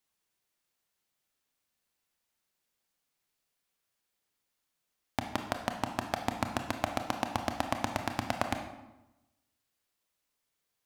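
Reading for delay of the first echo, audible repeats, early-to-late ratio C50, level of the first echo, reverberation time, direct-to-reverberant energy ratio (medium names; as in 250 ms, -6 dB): no echo, no echo, 7.5 dB, no echo, 1.0 s, 5.0 dB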